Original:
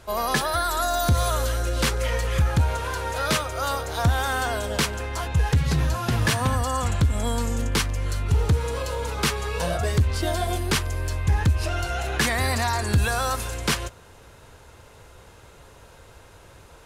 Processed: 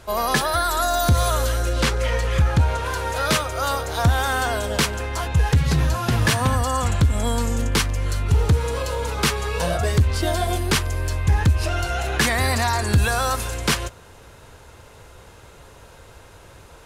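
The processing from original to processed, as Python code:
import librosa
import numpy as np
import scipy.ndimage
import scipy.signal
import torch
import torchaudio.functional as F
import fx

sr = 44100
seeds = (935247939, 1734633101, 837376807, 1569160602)

y = fx.high_shelf(x, sr, hz=9800.0, db=-10.5, at=(1.73, 2.86))
y = y * 10.0 ** (3.0 / 20.0)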